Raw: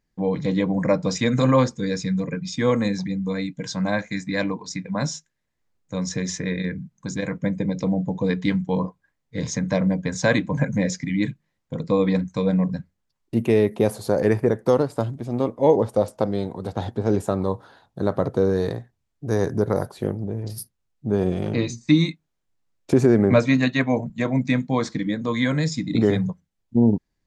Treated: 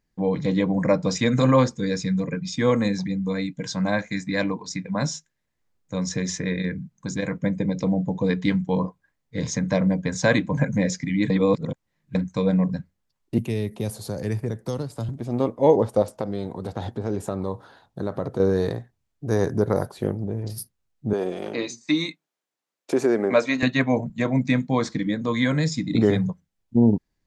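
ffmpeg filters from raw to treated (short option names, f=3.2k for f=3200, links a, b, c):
-filter_complex "[0:a]asettb=1/sr,asplit=3[a][b][c];[a]atrim=end=13.384[d];[b]atrim=start=13.38:end=15.09,asetpts=PTS-STARTPTS,afade=t=in:d=0.004:c=qsin,afade=t=out:st=1.706:d=0.004:c=qsin,acrossover=split=180|3000[e][f][g];[f]acompressor=threshold=-52dB:ratio=1.5:attack=3.2:release=140:knee=2.83:detection=peak[h];[e][h][g]amix=inputs=3:normalize=0[i];[c]atrim=start=15.086[j];[d][i]acrossfade=d=0.004:c1=hsin:c2=qsin[k];[k][j]acrossfade=d=0.004:c1=qsin:c2=hsin,asettb=1/sr,asplit=3[l][m][n];[l]atrim=end=16.024[o];[m]atrim=start=16.02:end=18.4,asetpts=PTS-STARTPTS,afade=t=in:d=0.004:c=qsin,afade=t=out:st=2.376:d=0.004:c=qsin,acompressor=threshold=-26dB:ratio=2:attack=3.2:release=140:knee=1:detection=peak[p];[n]atrim=start=18.396[q];[o][p]acrossfade=d=0.004:c1=hsin:c2=qsin[r];[r][q]acrossfade=d=0.004:c1=qsin:c2=hsin,asettb=1/sr,asplit=3[s][t][u];[s]atrim=end=21.134[v];[t]atrim=start=21.13:end=23.63,asetpts=PTS-STARTPTS,afade=t=in:d=0.004:c=qsin,afade=t=out:st=2.496:d=0.004:c=qsin,highpass=370[w];[u]atrim=start=23.626[x];[v][w]acrossfade=d=0.004:c1=hsin:c2=qsin[y];[y][x]acrossfade=d=0.004:c1=qsin:c2=hsin,asplit=3[z][aa][ab];[z]atrim=end=11.302[ac];[aa]atrim=start=11.298:end=12.152,asetpts=PTS-STARTPTS,areverse[ad];[ab]atrim=start=12.148[ae];[ac][ad]acrossfade=d=0.004:c1=hsin:c2=hsin[af];[af][ae]acrossfade=d=0.004:c1=hsin:c2=hsin"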